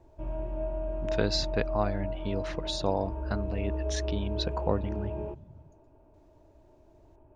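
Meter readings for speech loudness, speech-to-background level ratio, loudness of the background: -33.5 LUFS, 1.5 dB, -35.0 LUFS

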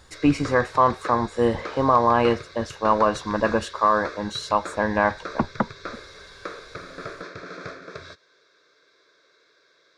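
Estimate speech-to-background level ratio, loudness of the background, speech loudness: 16.0 dB, -38.5 LUFS, -22.5 LUFS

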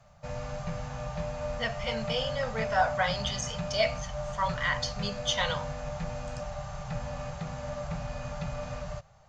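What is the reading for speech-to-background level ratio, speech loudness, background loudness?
6.0 dB, -31.0 LUFS, -37.0 LUFS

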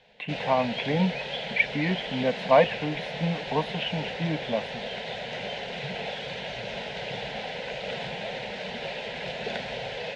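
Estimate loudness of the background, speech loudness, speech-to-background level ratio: -33.5 LUFS, -27.5 LUFS, 6.0 dB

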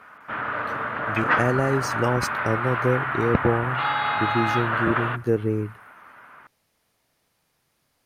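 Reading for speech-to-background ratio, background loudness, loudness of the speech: -0.5 dB, -25.5 LUFS, -26.0 LUFS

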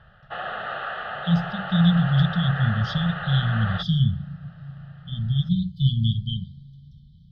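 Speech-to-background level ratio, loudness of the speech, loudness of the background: 8.5 dB, -23.5 LUFS, -32.0 LUFS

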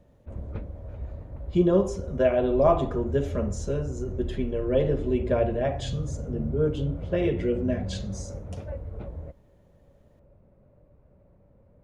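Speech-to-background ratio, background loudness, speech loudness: 9.0 dB, -36.0 LUFS, -27.0 LUFS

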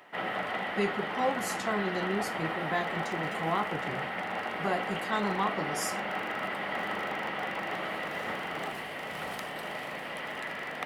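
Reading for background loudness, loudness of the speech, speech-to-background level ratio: -34.0 LUFS, -34.0 LUFS, 0.0 dB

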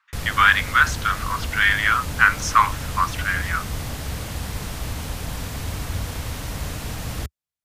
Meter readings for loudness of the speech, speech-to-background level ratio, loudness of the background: -19.5 LUFS, 11.0 dB, -30.5 LUFS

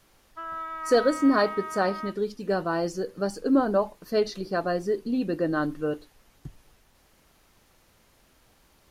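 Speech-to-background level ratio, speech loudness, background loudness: 9.0 dB, -26.5 LUFS, -35.5 LUFS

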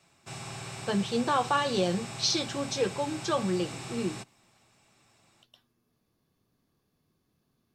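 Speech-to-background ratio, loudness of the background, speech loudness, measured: 10.5 dB, -40.0 LUFS, -29.5 LUFS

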